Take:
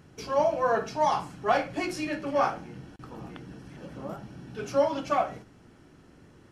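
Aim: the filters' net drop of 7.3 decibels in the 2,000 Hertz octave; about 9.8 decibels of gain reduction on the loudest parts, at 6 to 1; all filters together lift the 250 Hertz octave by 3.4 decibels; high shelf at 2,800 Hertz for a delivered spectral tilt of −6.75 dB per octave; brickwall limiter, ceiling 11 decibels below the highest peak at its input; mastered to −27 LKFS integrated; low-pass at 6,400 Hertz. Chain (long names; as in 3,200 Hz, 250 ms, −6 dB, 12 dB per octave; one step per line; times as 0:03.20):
low-pass filter 6,400 Hz
parametric band 250 Hz +4.5 dB
parametric band 2,000 Hz −8 dB
high-shelf EQ 2,800 Hz −6 dB
downward compressor 6 to 1, threshold −30 dBFS
level +14 dB
brickwall limiter −18 dBFS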